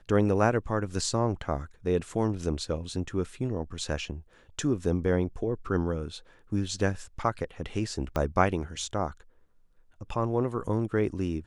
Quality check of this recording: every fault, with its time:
8.16 pop -16 dBFS

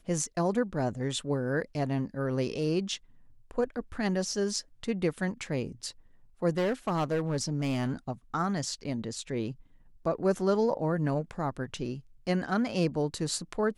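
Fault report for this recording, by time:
6.57–7.91 clipped -24 dBFS

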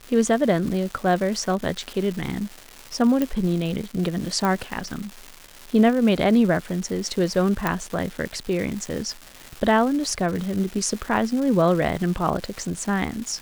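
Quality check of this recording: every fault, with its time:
crackle 490/s -30 dBFS
3.22 pop -10 dBFS
4.45 pop
7.67 pop -8 dBFS

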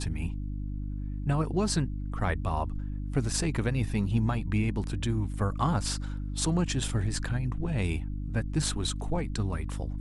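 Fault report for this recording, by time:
hum 50 Hz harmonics 6 -34 dBFS

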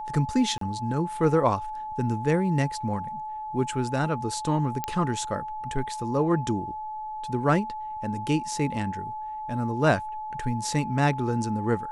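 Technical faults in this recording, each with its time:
tone 860 Hz -32 dBFS
0.58–0.61 gap 33 ms
4.84 pop -13 dBFS

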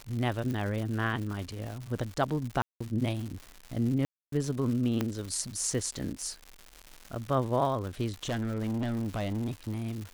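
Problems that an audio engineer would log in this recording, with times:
crackle 240/s -36 dBFS
0.51 pop
2.62–2.81 gap 0.185 s
4.05–4.32 gap 0.273 s
5.01 pop -15 dBFS
8.14–9.82 clipped -28 dBFS

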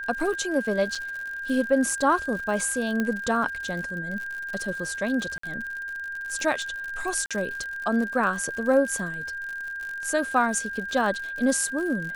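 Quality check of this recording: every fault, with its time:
crackle 81/s -32 dBFS
tone 1600 Hz -31 dBFS
0.95 gap 4.6 ms
3 pop -14 dBFS
5.38–5.43 gap 54 ms
7.26–7.31 gap 46 ms

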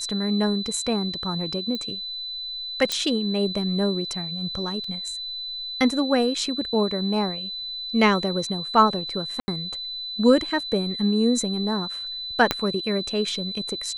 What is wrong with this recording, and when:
tone 4000 Hz -30 dBFS
1.75 pop -17 dBFS
2.92 pop -9 dBFS
4.84 gap 3.6 ms
9.4–9.48 gap 80 ms
12.51 pop -5 dBFS

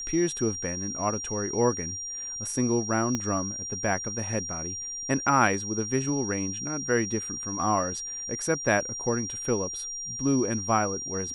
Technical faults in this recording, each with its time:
tone 5700 Hz -33 dBFS
3.15 pop -15 dBFS

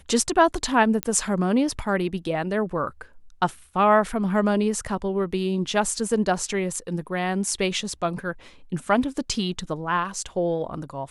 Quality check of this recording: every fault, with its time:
1.03 pop -9 dBFS

